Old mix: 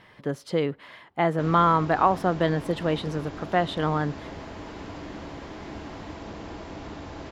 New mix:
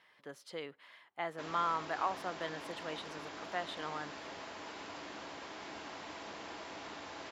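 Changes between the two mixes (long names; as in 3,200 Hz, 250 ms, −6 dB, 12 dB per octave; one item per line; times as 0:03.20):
speech −9.5 dB
master: add high-pass filter 1,200 Hz 6 dB per octave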